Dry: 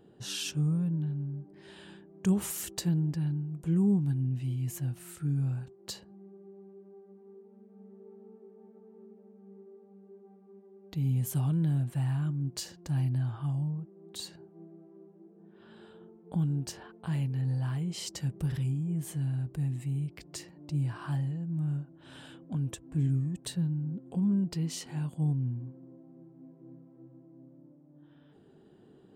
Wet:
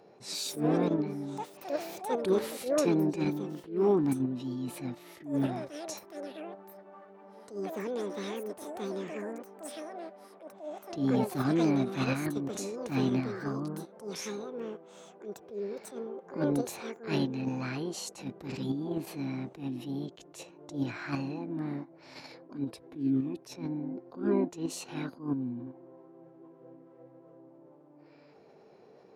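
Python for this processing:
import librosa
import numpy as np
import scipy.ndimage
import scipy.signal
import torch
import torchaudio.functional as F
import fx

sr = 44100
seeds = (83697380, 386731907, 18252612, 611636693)

p1 = scipy.signal.sosfilt(scipy.signal.butter(2, 4500.0, 'lowpass', fs=sr, output='sos'), x)
p2 = fx.formant_shift(p1, sr, semitones=6)
p3 = fx.echo_pitch(p2, sr, ms=187, semitones=7, count=2, db_per_echo=-6.0)
p4 = fx.highpass(p3, sr, hz=320.0, slope=6)
p5 = fx.level_steps(p4, sr, step_db=17)
p6 = p4 + (p5 * librosa.db_to_amplitude(1.0))
y = fx.attack_slew(p6, sr, db_per_s=160.0)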